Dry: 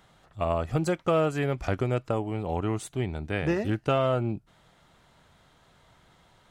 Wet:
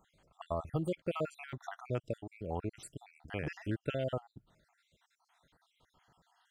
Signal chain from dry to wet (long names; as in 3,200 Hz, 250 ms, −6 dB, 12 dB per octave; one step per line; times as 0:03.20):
time-frequency cells dropped at random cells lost 58%
level −7.5 dB